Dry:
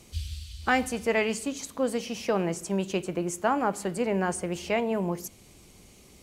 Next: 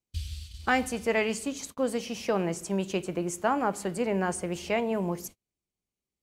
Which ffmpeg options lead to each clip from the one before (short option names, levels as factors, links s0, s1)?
-af "agate=range=0.0141:threshold=0.00891:ratio=16:detection=peak,volume=0.891"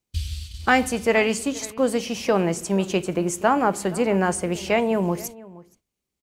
-filter_complex "[0:a]asplit=2[s0][s1];[s1]adelay=472.3,volume=0.1,highshelf=f=4000:g=-10.6[s2];[s0][s2]amix=inputs=2:normalize=0,volume=2.24"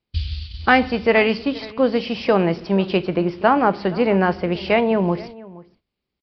-af "aresample=11025,aresample=44100,volume=1.5"